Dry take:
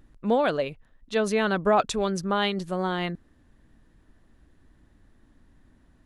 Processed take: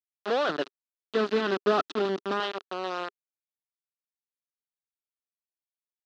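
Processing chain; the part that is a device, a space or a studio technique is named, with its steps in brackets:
hand-held game console (bit reduction 4 bits; loudspeaker in its box 400–4,100 Hz, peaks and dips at 400 Hz +5 dB, 900 Hz −4 dB, 1,300 Hz +5 dB, 2,200 Hz −9 dB)
0:00.49–0:02.40: low shelf with overshoot 400 Hz +9.5 dB, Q 1.5
level −4 dB

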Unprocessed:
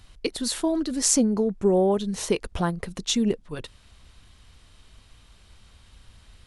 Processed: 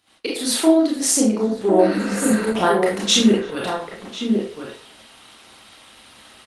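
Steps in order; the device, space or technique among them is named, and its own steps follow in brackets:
high-pass filter 300 Hz 12 dB per octave
healed spectral selection 0:01.82–0:02.39, 220–6,400 Hz after
parametric band 2,800 Hz +2.5 dB 0.95 octaves
slap from a distant wall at 180 metres, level −7 dB
speakerphone in a meeting room (convolution reverb RT60 0.40 s, pre-delay 25 ms, DRR −4 dB; far-end echo of a speakerphone 330 ms, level −24 dB; automatic gain control gain up to 9 dB; noise gate −54 dBFS, range −8 dB; Opus 24 kbit/s 48,000 Hz)

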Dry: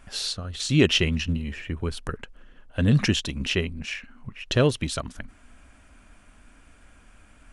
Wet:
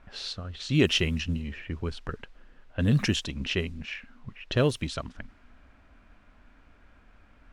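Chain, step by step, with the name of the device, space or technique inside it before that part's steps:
cassette deck with a dynamic noise filter (white noise bed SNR 31 dB; low-pass that shuts in the quiet parts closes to 2,100 Hz, open at −17.5 dBFS)
level −3.5 dB

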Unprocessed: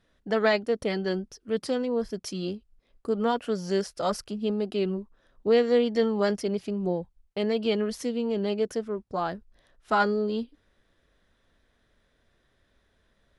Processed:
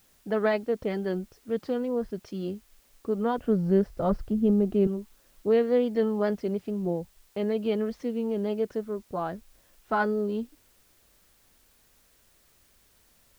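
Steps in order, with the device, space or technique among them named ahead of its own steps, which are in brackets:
0:03.38–0:04.87: RIAA equalisation playback
cassette deck with a dirty head (head-to-tape spacing loss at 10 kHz 29 dB; tape wow and flutter; white noise bed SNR 35 dB)

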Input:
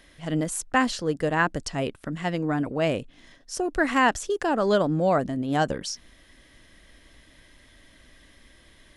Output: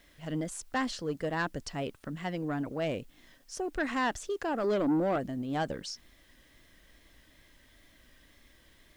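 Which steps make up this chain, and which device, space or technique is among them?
0:04.64–0:05.16: parametric band 310 Hz +12 dB 0.58 octaves
compact cassette (soft clipping −16.5 dBFS, distortion −13 dB; low-pass filter 8,100 Hz 12 dB per octave; tape wow and flutter; white noise bed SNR 36 dB)
level −6.5 dB

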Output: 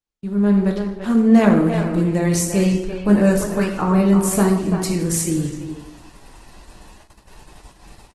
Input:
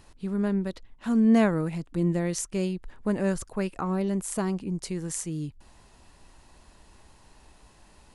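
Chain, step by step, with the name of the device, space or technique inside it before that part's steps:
speakerphone in a meeting room (convolution reverb RT60 0.80 s, pre-delay 5 ms, DRR 1.5 dB; far-end echo of a speakerphone 340 ms, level −7 dB; automatic gain control gain up to 9 dB; noise gate −42 dBFS, range −41 dB; Opus 16 kbit/s 48,000 Hz)

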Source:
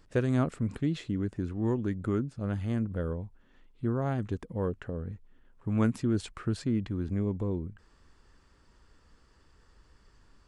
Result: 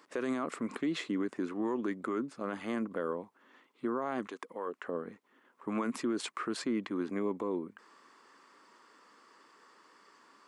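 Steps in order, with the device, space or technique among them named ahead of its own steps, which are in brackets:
laptop speaker (high-pass filter 260 Hz 24 dB per octave; parametric band 1,100 Hz +9 dB 0.53 octaves; parametric band 2,100 Hz +5 dB 0.33 octaves; brickwall limiter −28 dBFS, peak gain reduction 12.5 dB)
0:04.27–0:04.87: high-pass filter 900 Hz → 430 Hz 6 dB per octave
level +3.5 dB

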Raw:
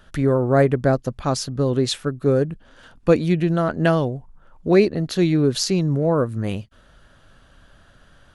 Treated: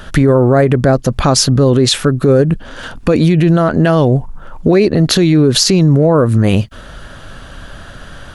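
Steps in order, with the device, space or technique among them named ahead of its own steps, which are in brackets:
loud club master (downward compressor 2 to 1, threshold −22 dBFS, peak gain reduction 7.5 dB; hard clipping −10 dBFS, distortion −49 dB; boost into a limiter +20.5 dB)
level −1 dB

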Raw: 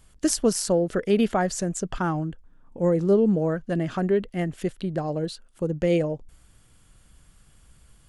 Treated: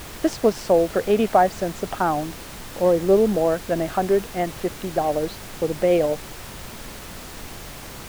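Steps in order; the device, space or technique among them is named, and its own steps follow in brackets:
horn gramophone (band-pass filter 240–3,300 Hz; parametric band 720 Hz +9 dB; tape wow and flutter; pink noise bed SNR 14 dB)
level +2 dB

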